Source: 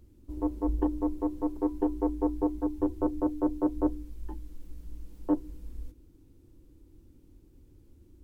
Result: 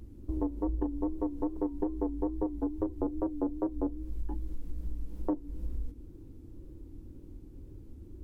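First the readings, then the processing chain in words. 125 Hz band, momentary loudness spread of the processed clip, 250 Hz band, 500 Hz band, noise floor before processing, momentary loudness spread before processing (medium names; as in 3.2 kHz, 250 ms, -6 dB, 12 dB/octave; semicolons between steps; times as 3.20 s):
+1.0 dB, 17 LU, -3.5 dB, -3.0 dB, -58 dBFS, 18 LU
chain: tilt shelf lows +5 dB, about 1.3 kHz; compression 6:1, threshold -33 dBFS, peak gain reduction 15.5 dB; wow and flutter 86 cents; trim +4 dB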